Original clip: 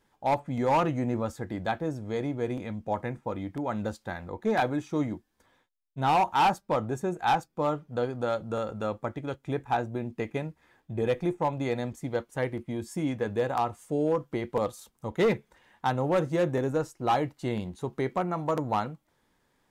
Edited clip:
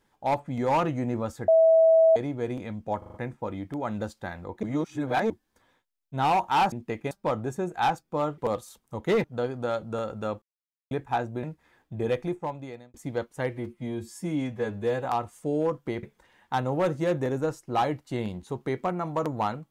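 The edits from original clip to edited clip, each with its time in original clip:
1.48–2.16 s: bleep 650 Hz -14.5 dBFS
2.98 s: stutter 0.04 s, 5 plays
4.47–5.14 s: reverse
9.01–9.50 s: mute
10.02–10.41 s: move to 6.56 s
11.11–11.92 s: fade out
12.47–13.51 s: stretch 1.5×
14.49–15.35 s: move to 7.83 s

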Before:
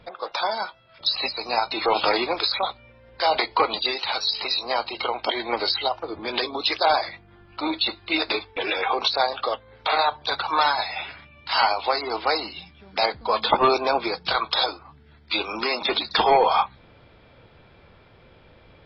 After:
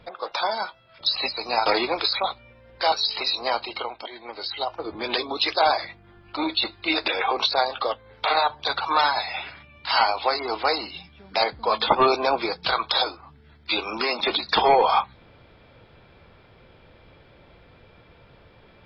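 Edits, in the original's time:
1.66–2.05 s: delete
3.31–4.16 s: delete
4.82–6.08 s: dip -12.5 dB, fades 0.48 s
8.32–8.70 s: delete

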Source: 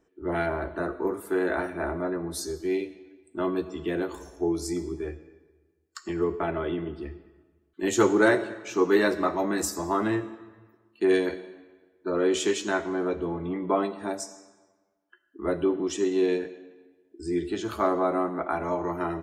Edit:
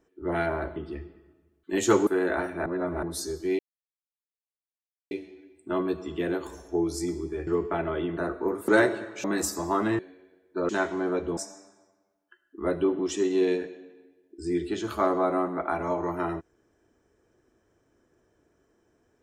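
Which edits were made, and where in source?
0.76–1.27 s: swap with 6.86–8.17 s
1.86–2.23 s: reverse
2.79 s: insert silence 1.52 s
5.15–6.16 s: delete
8.73–9.44 s: delete
10.19–11.49 s: delete
12.19–12.63 s: delete
13.31–14.18 s: delete

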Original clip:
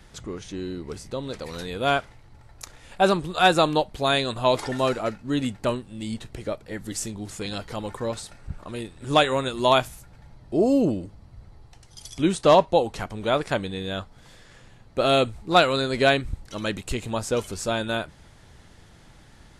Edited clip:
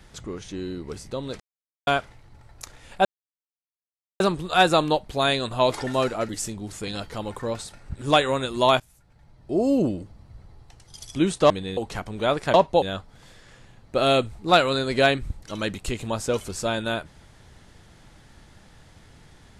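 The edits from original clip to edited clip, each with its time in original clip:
1.40–1.87 s: mute
3.05 s: insert silence 1.15 s
5.14–6.87 s: delete
8.53–8.98 s: delete
9.83–10.88 s: fade in, from -20.5 dB
12.53–12.81 s: swap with 13.58–13.85 s

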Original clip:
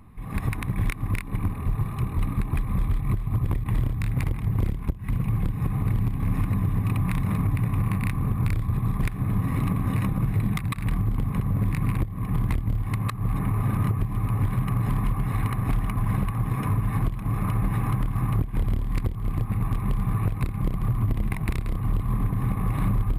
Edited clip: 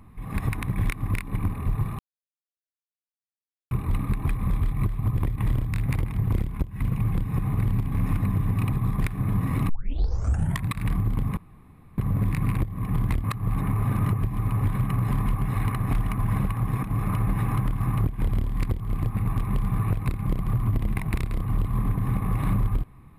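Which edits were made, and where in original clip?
1.99 s: insert silence 1.72 s
7.00–8.73 s: delete
9.70 s: tape start 0.96 s
11.38 s: insert room tone 0.61 s
12.64–13.02 s: delete
16.61–17.18 s: delete

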